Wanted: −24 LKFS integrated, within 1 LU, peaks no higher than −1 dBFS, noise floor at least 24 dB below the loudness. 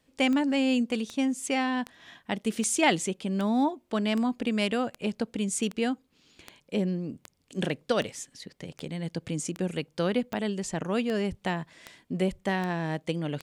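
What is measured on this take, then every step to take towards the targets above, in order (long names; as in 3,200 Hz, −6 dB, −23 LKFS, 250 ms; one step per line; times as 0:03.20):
number of clicks 18; integrated loudness −29.0 LKFS; sample peak −10.5 dBFS; target loudness −24.0 LKFS
→ click removal
level +5 dB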